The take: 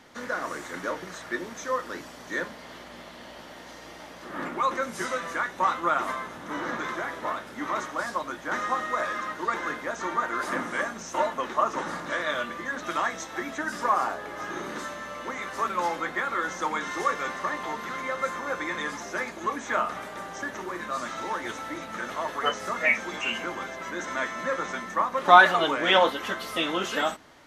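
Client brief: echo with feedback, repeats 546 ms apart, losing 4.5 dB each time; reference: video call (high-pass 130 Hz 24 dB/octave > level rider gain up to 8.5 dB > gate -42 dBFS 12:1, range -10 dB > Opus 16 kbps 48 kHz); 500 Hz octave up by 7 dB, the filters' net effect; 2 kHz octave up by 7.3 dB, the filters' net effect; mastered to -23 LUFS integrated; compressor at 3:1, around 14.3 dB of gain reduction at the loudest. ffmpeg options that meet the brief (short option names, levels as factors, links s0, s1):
-af "equalizer=f=500:t=o:g=8,equalizer=f=2000:t=o:g=9,acompressor=threshold=0.0631:ratio=3,highpass=f=130:w=0.5412,highpass=f=130:w=1.3066,aecho=1:1:546|1092|1638|2184|2730|3276|3822|4368|4914:0.596|0.357|0.214|0.129|0.0772|0.0463|0.0278|0.0167|0.01,dynaudnorm=m=2.66,agate=range=0.316:threshold=0.00794:ratio=12,volume=0.708" -ar 48000 -c:a libopus -b:a 16k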